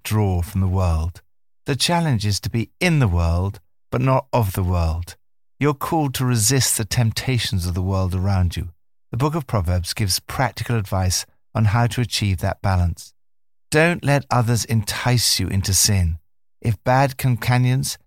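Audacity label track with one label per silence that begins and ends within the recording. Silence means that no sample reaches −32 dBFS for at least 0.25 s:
1.170000	1.670000	silence
3.560000	3.920000	silence
5.130000	5.610000	silence
8.690000	9.130000	silence
11.230000	11.550000	silence
13.060000	13.720000	silence
16.160000	16.650000	silence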